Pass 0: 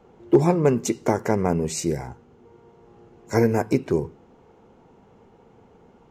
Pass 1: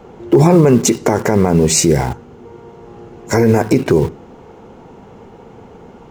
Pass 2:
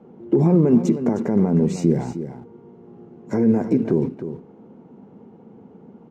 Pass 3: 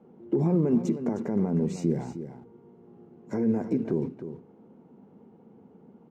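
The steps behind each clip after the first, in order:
in parallel at −11.5 dB: bit-depth reduction 6 bits, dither none; on the sum: boost into a limiter +15.5 dB; level −1 dB
resonant band-pass 210 Hz, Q 2; spectral tilt +2.5 dB per octave; single-tap delay 310 ms −10.5 dB; level +4 dB
mains-hum notches 60/120 Hz; level −8 dB

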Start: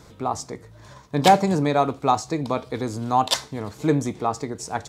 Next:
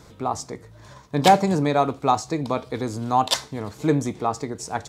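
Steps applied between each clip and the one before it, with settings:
no processing that can be heard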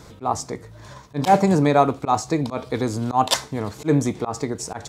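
dynamic equaliser 4,000 Hz, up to −4 dB, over −39 dBFS, Q 1.3
volume swells 104 ms
level +4 dB

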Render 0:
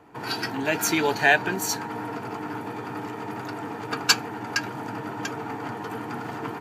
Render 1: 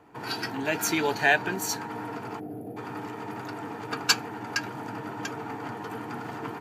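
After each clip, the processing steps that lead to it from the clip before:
gain on a spectral selection 0:02.40–0:02.77, 810–10,000 Hz −23 dB
level −3 dB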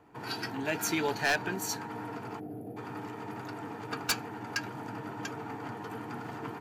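low-shelf EQ 160 Hz +4 dB
wave folding −15.5 dBFS
level −4.5 dB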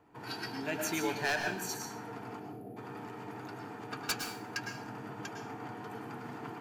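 dense smooth reverb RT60 0.51 s, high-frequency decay 1×, pre-delay 95 ms, DRR 4.5 dB
level −4.5 dB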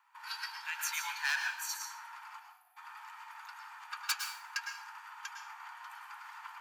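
Butterworth high-pass 890 Hz 72 dB per octave
level +1 dB

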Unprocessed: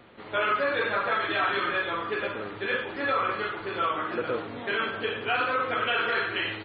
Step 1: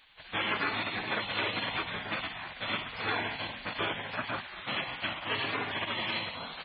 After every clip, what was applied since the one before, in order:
gate on every frequency bin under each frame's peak −15 dB weak
level +4 dB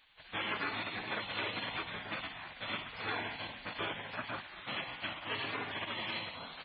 feedback delay network reverb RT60 2.2 s, high-frequency decay 0.55×, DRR 20 dB
level −5.5 dB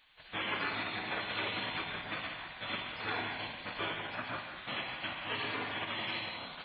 reverb whose tail is shaped and stops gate 230 ms flat, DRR 4 dB

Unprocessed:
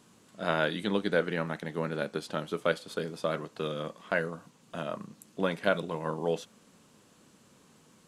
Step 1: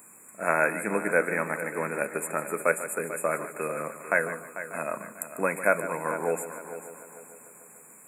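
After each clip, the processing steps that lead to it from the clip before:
brick-wall band-stop 2,600–6,900 Hz
RIAA equalisation recording
echo machine with several playback heads 148 ms, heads first and third, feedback 52%, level −13 dB
level +5 dB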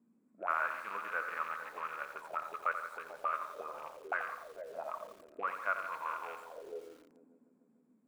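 loose part that buzzes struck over −39 dBFS, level −19 dBFS
envelope filter 210–1,200 Hz, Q 6.5, up, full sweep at −26 dBFS
feedback echo at a low word length 86 ms, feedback 55%, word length 9 bits, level −8.5 dB

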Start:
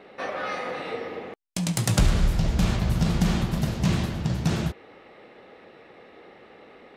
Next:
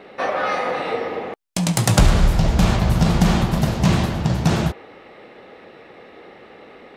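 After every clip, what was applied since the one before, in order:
dynamic equaliser 820 Hz, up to +5 dB, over −46 dBFS, Q 0.99
level +6 dB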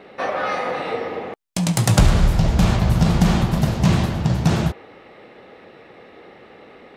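parametric band 110 Hz +3 dB 1.6 octaves
level −1.5 dB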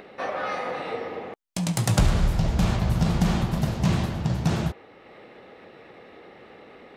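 upward compression, threshold −35 dBFS
level −6 dB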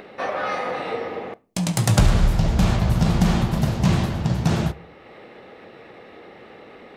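convolution reverb RT60 0.45 s, pre-delay 9 ms, DRR 18 dB
level +3.5 dB

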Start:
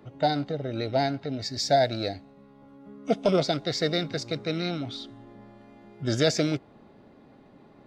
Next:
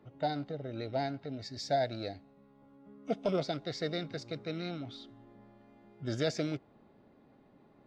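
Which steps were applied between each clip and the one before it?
high-shelf EQ 5,700 Hz −8.5 dB
level −8.5 dB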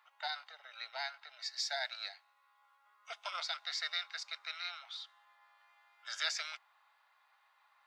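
Butterworth high-pass 970 Hz 36 dB per octave
level +5 dB

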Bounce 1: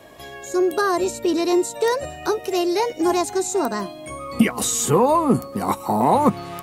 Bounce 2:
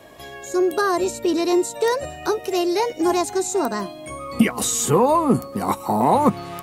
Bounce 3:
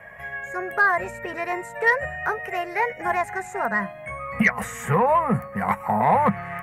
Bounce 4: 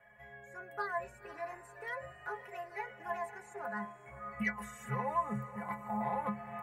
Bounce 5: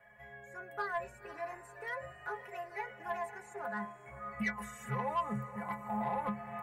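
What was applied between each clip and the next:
no processing that can be heard
drawn EQ curve 200 Hz 0 dB, 300 Hz −23 dB, 480 Hz −4 dB, 710 Hz 0 dB, 1,200 Hz 0 dB, 1,900 Hz +14 dB, 3,900 Hz −24 dB, 12,000 Hz −12 dB; soft clipping −6 dBFS, distortion −27 dB
stiff-string resonator 62 Hz, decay 0.46 s, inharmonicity 0.03; feedback delay with all-pass diffusion 531 ms, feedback 43%, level −14 dB; level −7.5 dB
soft clipping −26 dBFS, distortion −20 dB; level +1 dB

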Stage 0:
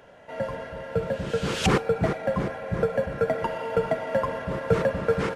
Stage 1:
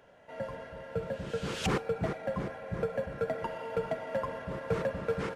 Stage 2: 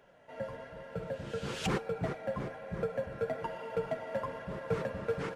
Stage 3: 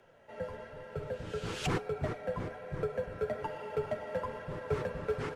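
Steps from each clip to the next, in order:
gain into a clipping stage and back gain 14.5 dB; level −8 dB
flanger 1.1 Hz, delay 4.7 ms, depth 4.9 ms, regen −44%; level +1.5 dB
frequency shifter −30 Hz

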